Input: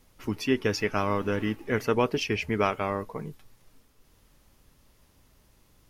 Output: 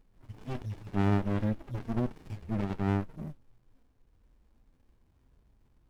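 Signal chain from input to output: median-filter separation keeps harmonic; running maximum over 65 samples

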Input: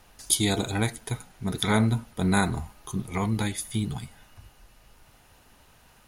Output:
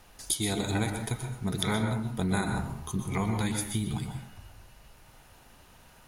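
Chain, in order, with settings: compressor, threshold -26 dBFS, peak gain reduction 9.5 dB; plate-style reverb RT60 0.58 s, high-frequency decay 0.5×, pre-delay 0.11 s, DRR 4.5 dB

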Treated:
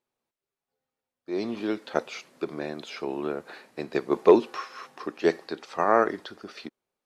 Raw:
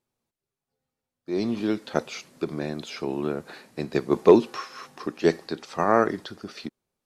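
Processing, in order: tone controls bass -11 dB, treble -6 dB

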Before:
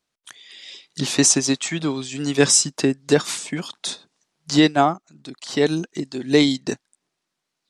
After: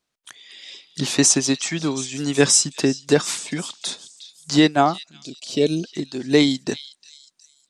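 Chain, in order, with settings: delay with a stepping band-pass 0.363 s, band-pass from 3900 Hz, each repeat 0.7 oct, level -12 dB; spectral gain 5.23–5.84, 710–2200 Hz -14 dB

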